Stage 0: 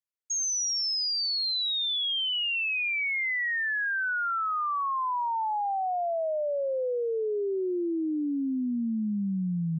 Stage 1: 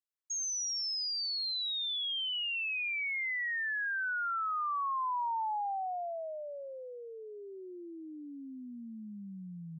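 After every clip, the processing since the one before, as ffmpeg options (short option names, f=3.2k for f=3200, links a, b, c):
-af "lowshelf=f=640:t=q:w=1.5:g=-8.5,volume=-6.5dB"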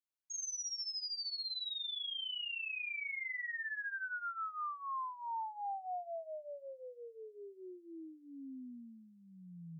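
-af "alimiter=level_in=9dB:limit=-24dB:level=0:latency=1,volume=-9dB,flanger=delay=15:depth=6:speed=0.24,volume=-2dB"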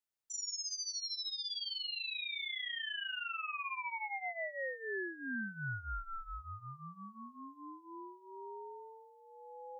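-af "aeval=exprs='val(0)*sin(2*PI*670*n/s)':c=same,volume=3.5dB"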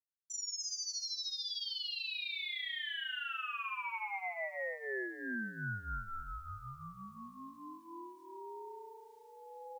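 -af "acrusher=bits=11:mix=0:aa=0.000001,aecho=1:1:295|590|885|1180:0.282|0.093|0.0307|0.0101"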